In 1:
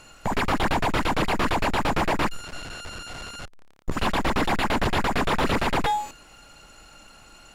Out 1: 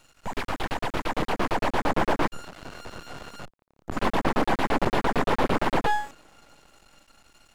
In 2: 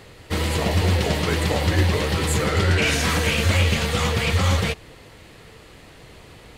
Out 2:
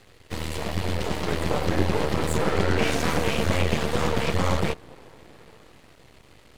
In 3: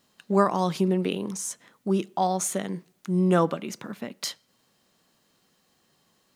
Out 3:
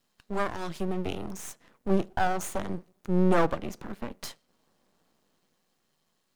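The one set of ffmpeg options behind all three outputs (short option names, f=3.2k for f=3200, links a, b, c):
-filter_complex "[0:a]acrossover=split=130|1200[a][b][c];[b]dynaudnorm=f=200:g=13:m=11dB[d];[a][d][c]amix=inputs=3:normalize=0,aeval=exprs='max(val(0),0)':c=same,volume=-4.5dB"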